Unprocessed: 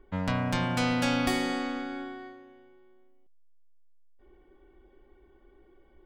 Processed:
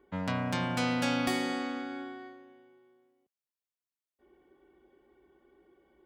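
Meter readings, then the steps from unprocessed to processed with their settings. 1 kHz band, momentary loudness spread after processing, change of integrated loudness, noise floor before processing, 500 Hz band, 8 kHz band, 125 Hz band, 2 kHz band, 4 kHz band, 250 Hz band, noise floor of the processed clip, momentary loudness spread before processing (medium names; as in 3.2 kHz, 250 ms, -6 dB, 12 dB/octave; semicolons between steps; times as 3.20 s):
-2.5 dB, 15 LU, -3.0 dB, -60 dBFS, -2.5 dB, -2.5 dB, -4.5 dB, -2.5 dB, -2.5 dB, -2.5 dB, under -85 dBFS, 15 LU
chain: high-pass 110 Hz 12 dB/octave; trim -2.5 dB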